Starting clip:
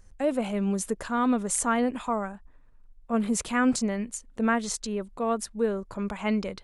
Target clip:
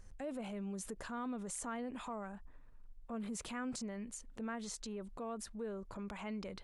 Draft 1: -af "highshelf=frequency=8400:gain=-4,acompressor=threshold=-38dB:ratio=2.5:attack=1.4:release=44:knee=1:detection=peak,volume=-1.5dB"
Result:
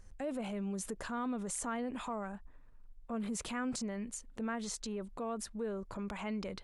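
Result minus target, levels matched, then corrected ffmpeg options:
downward compressor: peak gain reduction −4 dB
-af "highshelf=frequency=8400:gain=-4,acompressor=threshold=-45dB:ratio=2.5:attack=1.4:release=44:knee=1:detection=peak,volume=-1.5dB"

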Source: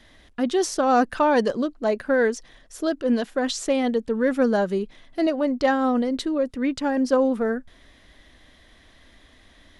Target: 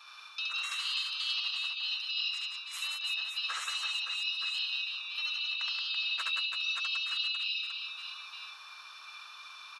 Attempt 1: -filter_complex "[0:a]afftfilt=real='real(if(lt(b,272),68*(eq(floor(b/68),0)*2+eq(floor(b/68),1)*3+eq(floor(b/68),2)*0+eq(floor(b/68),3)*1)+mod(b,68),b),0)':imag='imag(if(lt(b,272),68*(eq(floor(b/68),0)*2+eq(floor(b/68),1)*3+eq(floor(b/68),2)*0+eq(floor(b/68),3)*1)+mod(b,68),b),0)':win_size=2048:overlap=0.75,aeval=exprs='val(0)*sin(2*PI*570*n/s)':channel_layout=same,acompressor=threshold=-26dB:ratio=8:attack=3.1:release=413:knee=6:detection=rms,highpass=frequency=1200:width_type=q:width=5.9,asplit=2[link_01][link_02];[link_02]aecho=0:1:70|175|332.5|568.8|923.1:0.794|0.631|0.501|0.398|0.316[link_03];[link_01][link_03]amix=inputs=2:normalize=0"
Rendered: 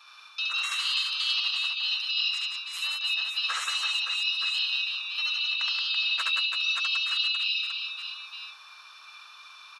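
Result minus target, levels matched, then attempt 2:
downward compressor: peak gain reduction −6 dB
-filter_complex "[0:a]afftfilt=real='real(if(lt(b,272),68*(eq(floor(b/68),0)*2+eq(floor(b/68),1)*3+eq(floor(b/68),2)*0+eq(floor(b/68),3)*1)+mod(b,68),b),0)':imag='imag(if(lt(b,272),68*(eq(floor(b/68),0)*2+eq(floor(b/68),1)*3+eq(floor(b/68),2)*0+eq(floor(b/68),3)*1)+mod(b,68),b),0)':win_size=2048:overlap=0.75,aeval=exprs='val(0)*sin(2*PI*570*n/s)':channel_layout=same,acompressor=threshold=-33dB:ratio=8:attack=3.1:release=413:knee=6:detection=rms,highpass=frequency=1200:width_type=q:width=5.9,asplit=2[link_01][link_02];[link_02]aecho=0:1:70|175|332.5|568.8|923.1:0.794|0.631|0.501|0.398|0.316[link_03];[link_01][link_03]amix=inputs=2:normalize=0"

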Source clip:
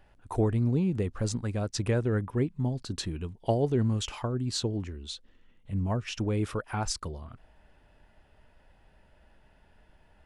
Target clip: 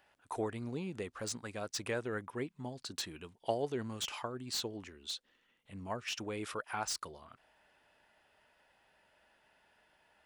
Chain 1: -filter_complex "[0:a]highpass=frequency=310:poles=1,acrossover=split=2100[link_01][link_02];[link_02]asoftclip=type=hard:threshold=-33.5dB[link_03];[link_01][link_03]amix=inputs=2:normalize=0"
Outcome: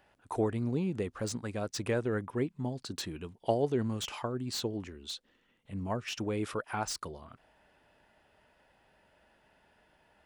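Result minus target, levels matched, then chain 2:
250 Hz band +3.5 dB
-filter_complex "[0:a]highpass=frequency=1000:poles=1,acrossover=split=2100[link_01][link_02];[link_02]asoftclip=type=hard:threshold=-33.5dB[link_03];[link_01][link_03]amix=inputs=2:normalize=0"

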